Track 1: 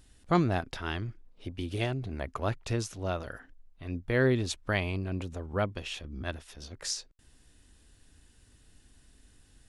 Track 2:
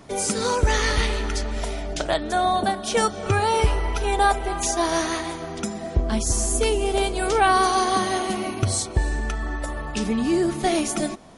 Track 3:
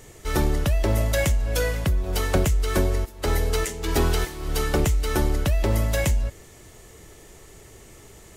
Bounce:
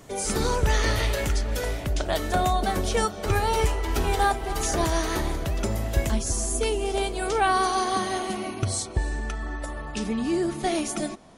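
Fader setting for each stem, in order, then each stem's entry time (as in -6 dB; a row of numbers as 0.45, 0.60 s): -16.0, -4.0, -6.5 dB; 0.00, 0.00, 0.00 s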